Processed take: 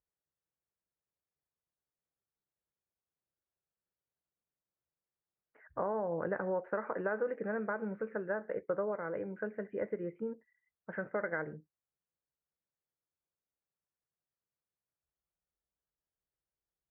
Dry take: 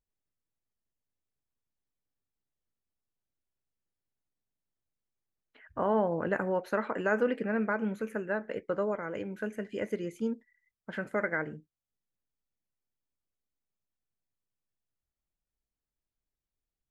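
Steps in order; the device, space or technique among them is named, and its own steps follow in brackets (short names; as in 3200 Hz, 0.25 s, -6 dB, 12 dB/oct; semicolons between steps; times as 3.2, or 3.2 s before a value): LPF 1900 Hz 24 dB/oct; bass amplifier (compressor, threshold -29 dBFS, peak gain reduction 7 dB; speaker cabinet 62–2400 Hz, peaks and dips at 100 Hz -7 dB, 250 Hz -10 dB, 520 Hz +3 dB); gain -1.5 dB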